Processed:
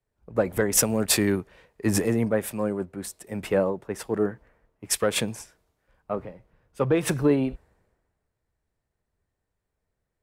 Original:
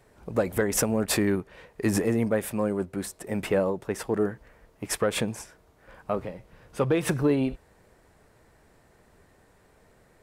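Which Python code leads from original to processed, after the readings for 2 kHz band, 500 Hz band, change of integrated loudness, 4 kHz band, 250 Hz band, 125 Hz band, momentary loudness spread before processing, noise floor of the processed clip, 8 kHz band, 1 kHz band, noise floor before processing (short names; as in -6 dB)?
+1.0 dB, +1.0 dB, +1.5 dB, +4.5 dB, +0.5 dB, +1.0 dB, 18 LU, -82 dBFS, +5.5 dB, 0.0 dB, -60 dBFS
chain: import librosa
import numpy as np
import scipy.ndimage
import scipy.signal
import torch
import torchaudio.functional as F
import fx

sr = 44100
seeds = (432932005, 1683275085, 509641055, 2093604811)

y = fx.band_widen(x, sr, depth_pct=70)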